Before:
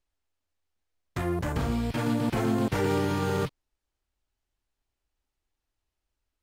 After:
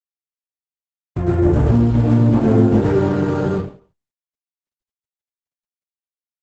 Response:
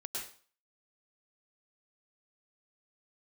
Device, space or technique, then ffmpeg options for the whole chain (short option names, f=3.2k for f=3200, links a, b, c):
speakerphone in a meeting room: -filter_complex "[0:a]tiltshelf=f=970:g=9.5,aecho=1:1:78:0.112[a];[1:a]atrim=start_sample=2205[b];[a][b]afir=irnorm=-1:irlink=0,dynaudnorm=f=350:g=5:m=14dB,agate=range=-42dB:threshold=-51dB:ratio=16:detection=peak,volume=-1dB" -ar 48000 -c:a libopus -b:a 12k